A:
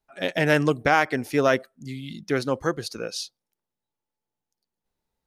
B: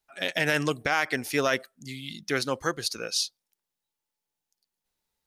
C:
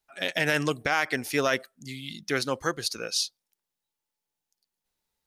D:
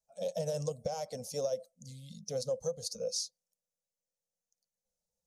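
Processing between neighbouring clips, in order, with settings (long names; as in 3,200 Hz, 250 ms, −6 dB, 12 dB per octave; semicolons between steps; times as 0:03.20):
tilt shelving filter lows −6 dB, about 1,300 Hz; brickwall limiter −11.5 dBFS, peak gain reduction 7.5 dB
no processing that can be heard
spectral magnitudes quantised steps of 15 dB; drawn EQ curve 120 Hz 0 dB, 200 Hz +6 dB, 350 Hz −27 dB, 500 Hz +12 dB, 1,700 Hz −30 dB, 3,000 Hz −17 dB, 6,200 Hz +5 dB, 14,000 Hz −7 dB; downward compressor, threshold −24 dBFS, peak gain reduction 7.5 dB; level −6 dB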